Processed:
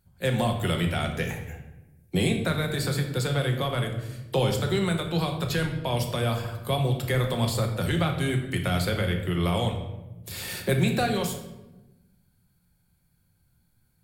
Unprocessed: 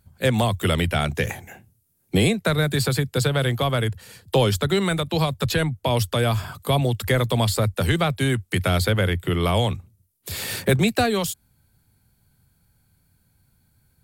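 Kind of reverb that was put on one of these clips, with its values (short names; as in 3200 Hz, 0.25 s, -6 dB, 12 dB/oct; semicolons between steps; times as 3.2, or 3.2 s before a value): shoebox room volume 450 m³, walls mixed, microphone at 0.93 m; gain -7 dB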